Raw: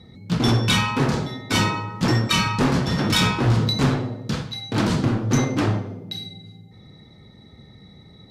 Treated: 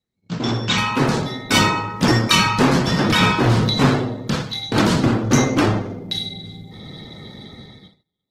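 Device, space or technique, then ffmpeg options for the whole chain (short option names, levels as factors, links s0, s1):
video call: -filter_complex "[0:a]asettb=1/sr,asplit=3[s0][s1][s2];[s0]atrim=end=2.914[s3];[s1]atrim=start=2.91:end=4.63,asetpts=PTS-STARTPTS,afade=t=in:d=0.004:c=qsin,afade=t=out:st=1.716:d=0.004:c=qsin,acrossover=split=3300[s4][s5];[s5]acompressor=threshold=0.0224:ratio=4:attack=1:release=60[s6];[s4][s6]amix=inputs=2:normalize=0[s7];[s2]atrim=start=4.626[s8];[s3][s7]acrossfade=d=0.004:c1=hsin:c2=qsin[s9];[s9][s8]acrossfade=d=0.004:c1=qsin:c2=hsin,highpass=f=170:p=1,dynaudnorm=f=100:g=17:m=5.96,agate=range=0.0251:threshold=0.00891:ratio=16:detection=peak,volume=0.841" -ar 48000 -c:a libopus -b:a 16k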